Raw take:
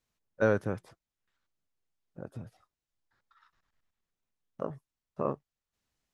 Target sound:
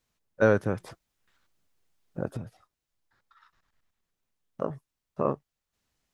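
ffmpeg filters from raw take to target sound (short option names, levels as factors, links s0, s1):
-filter_complex "[0:a]asettb=1/sr,asplit=3[s0][s1][s2];[s0]atrim=end=0.804[s3];[s1]atrim=start=0.8:end=2.37,asetpts=PTS-STARTPTS,afade=t=in:d=0.004:c=qsin,afade=t=out:st=1.566:d=0.004:c=qsin,acontrast=69[s4];[s2]atrim=start=2.366[s5];[s3][s4]acrossfade=d=0.004:c1=hsin:c2=qsin[s6];[s6][s5]acrossfade=d=0.004:c1=qsin:c2=hsin,volume=1.68"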